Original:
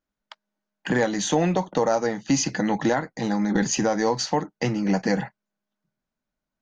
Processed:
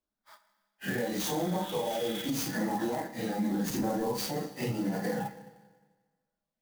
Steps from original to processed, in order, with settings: phase scrambler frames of 0.1 s; 1.39–2.32 spectral repair 1200–4000 Hz before; low shelf 240 Hz -5.5 dB; harmonic-percussive split percussive -7 dB; 3.7–4.14 tilt -2.5 dB/oct; compressor, threshold -24 dBFS, peak gain reduction 7 dB; limiter -22.5 dBFS, peak gain reduction 6 dB; LFO notch sine 0.85 Hz 950–2900 Hz; Schroeder reverb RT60 1.4 s, combs from 26 ms, DRR 10.5 dB; clock jitter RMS 0.029 ms

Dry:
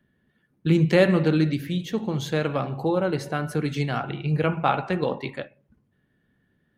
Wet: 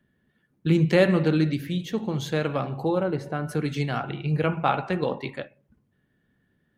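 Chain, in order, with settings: 3.03–3.49 high shelf 2200 Hz -11 dB; gain -1 dB

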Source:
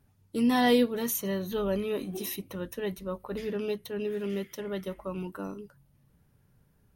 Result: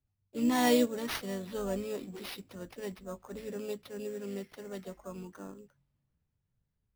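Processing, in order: harmoniser +4 st -12 dB; sample-rate reducer 7600 Hz, jitter 0%; three-band expander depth 40%; gain -6.5 dB

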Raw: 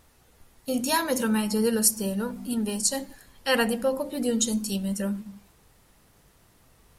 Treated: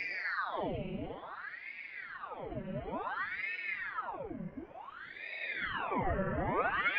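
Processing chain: mistuned SSB -210 Hz 300–2300 Hz; Paulstretch 21×, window 0.10 s, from 4.73; ring modulator with a swept carrier 1200 Hz, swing 85%, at 0.56 Hz; gain +2 dB

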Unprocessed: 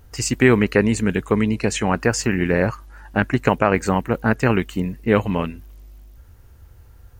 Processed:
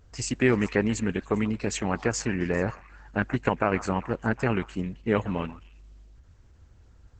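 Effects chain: delay with a stepping band-pass 0.133 s, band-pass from 1100 Hz, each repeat 1.4 oct, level -11.5 dB; gain -7 dB; Opus 10 kbps 48000 Hz

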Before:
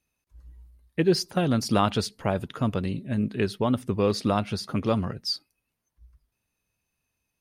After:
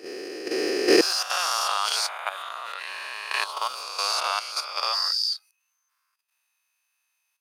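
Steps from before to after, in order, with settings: spectral swells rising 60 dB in 2.51 s; HPF 320 Hz 24 dB/oct, from 1.01 s 950 Hz; level quantiser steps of 10 dB; gain +4.5 dB

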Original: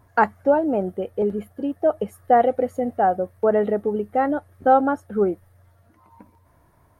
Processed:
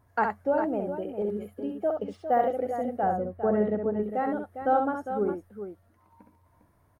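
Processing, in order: 3.03–4.03 tone controls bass +9 dB, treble -14 dB; tapped delay 66/404 ms -5/-9.5 dB; 1.89–2.53 decimation joined by straight lines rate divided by 3×; gain -8.5 dB

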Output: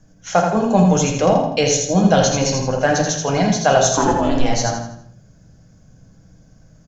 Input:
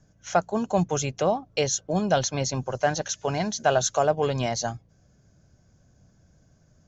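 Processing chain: 3.96–4.49 ring modulator 340 Hz -> 100 Hz; feedback echo 82 ms, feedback 40%, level -5 dB; on a send at -2.5 dB: reverb RT60 0.50 s, pre-delay 4 ms; on the sum: gain +5.5 dB

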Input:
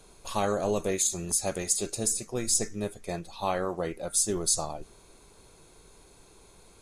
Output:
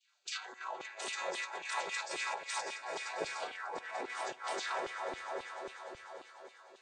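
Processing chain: chord vocoder major triad, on A3; LPF 5900 Hz 12 dB/oct; spectral gate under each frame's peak -20 dB weak; low shelf 150 Hz +10 dB; swelling echo 99 ms, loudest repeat 8, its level -15 dB; negative-ratio compressor -53 dBFS, ratio -1; LFO high-pass saw down 3.7 Hz 300–3300 Hz; reverb RT60 2.4 s, pre-delay 28 ms, DRR 17 dB; three-band expander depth 100%; gain +11 dB

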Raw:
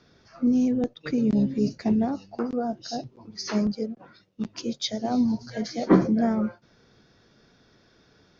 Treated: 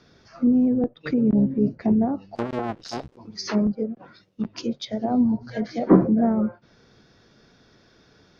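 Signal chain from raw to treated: 2.35–3.16 cycle switcher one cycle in 2, muted; treble ducked by the level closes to 1100 Hz, closed at -23.5 dBFS; gain +3 dB

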